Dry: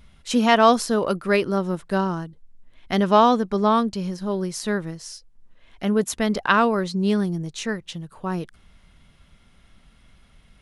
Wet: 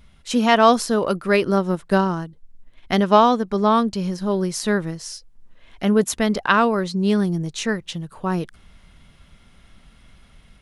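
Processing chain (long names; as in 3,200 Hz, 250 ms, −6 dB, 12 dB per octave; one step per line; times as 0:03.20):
0:01.43–0:03.47: transient designer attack +3 dB, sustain −3 dB
automatic gain control gain up to 4 dB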